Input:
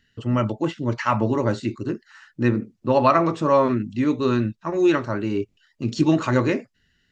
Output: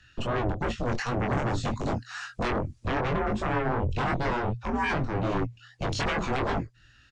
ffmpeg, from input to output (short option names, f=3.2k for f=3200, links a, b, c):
-filter_complex "[0:a]asettb=1/sr,asplit=3[a][b][c];[a]atrim=end=0.704[d];[b]atrim=start=0.7:end=2.95,asetpts=PTS-STARTPTS,afade=t=in:d=0.004:c=qsin,afade=t=out:st=2.246:d=0.004:c=qsin,highshelf=f=4.9k:g=11[e];[c]atrim=start=2.946[f];[d][e]acrossfade=d=0.004:c1=hsin:c2=qsin[g];[g][f]acrossfade=d=0.004:c1=qsin:c2=hsin,acrossover=split=380[h][i];[i]acompressor=threshold=-39dB:ratio=6[j];[h][j]amix=inputs=2:normalize=0,aeval=exprs='0.0531*sin(PI/2*1.41*val(0)/0.0531)':c=same,flanger=delay=19.5:depth=3.5:speed=2.6,afreqshift=-120,aresample=22050,aresample=44100,volume=4.5dB"